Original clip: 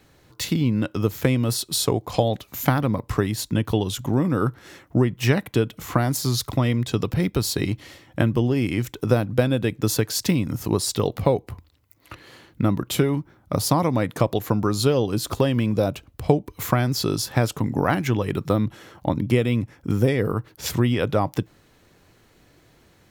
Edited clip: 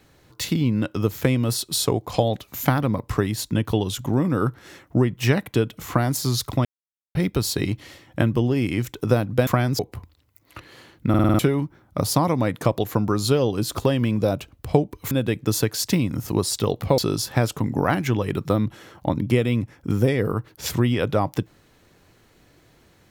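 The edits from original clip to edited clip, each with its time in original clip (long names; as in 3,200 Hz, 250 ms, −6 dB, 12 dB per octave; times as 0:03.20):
0:06.65–0:07.15: silence
0:09.47–0:11.34: swap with 0:16.66–0:16.98
0:12.64: stutter in place 0.05 s, 6 plays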